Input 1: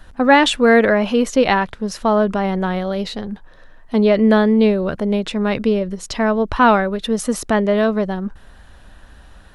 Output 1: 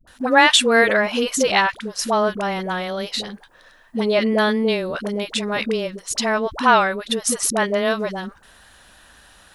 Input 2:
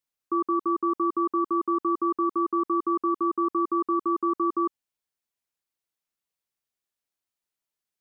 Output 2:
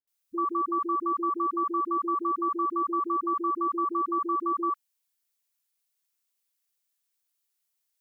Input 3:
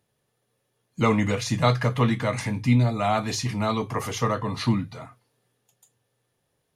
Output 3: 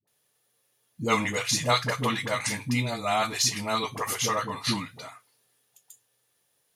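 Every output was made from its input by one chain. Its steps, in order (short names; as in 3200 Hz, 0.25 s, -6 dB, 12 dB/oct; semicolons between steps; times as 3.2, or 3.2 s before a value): tilt +3 dB/oct; dispersion highs, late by 75 ms, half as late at 510 Hz; gain -1 dB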